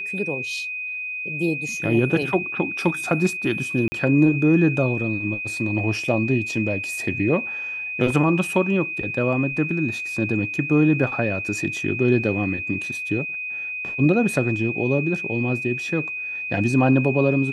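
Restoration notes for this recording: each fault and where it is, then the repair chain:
whine 2.5 kHz -27 dBFS
3.88–3.92 s: dropout 40 ms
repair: band-stop 2.5 kHz, Q 30; interpolate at 3.88 s, 40 ms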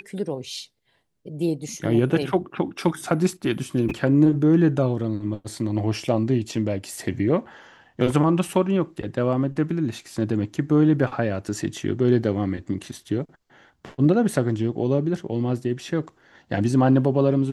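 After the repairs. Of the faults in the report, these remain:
nothing left

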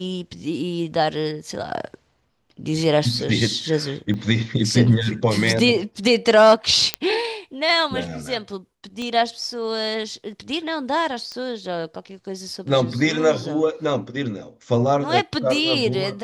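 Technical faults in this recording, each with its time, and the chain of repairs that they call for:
4.14 s: dropout 2.5 ms
6.94 s: pop -3 dBFS
9.02 s: pop -19 dBFS
11.32 s: pop -21 dBFS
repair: de-click; interpolate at 4.14 s, 2.5 ms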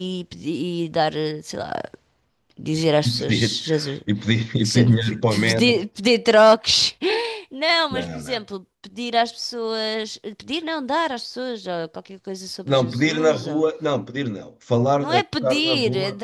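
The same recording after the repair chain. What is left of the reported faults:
9.02 s: pop

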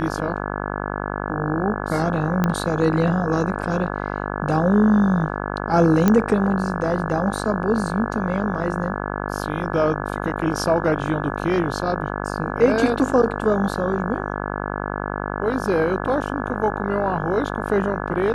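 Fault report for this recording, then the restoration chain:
buzz 50 Hz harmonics 34 -27 dBFS
2.44 s: pop -8 dBFS
6.08 s: pop -5 dBFS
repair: de-click; de-hum 50 Hz, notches 34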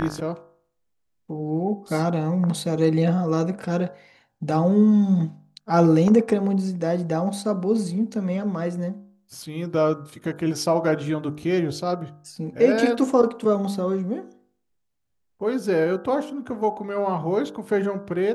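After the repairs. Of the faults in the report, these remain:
nothing left

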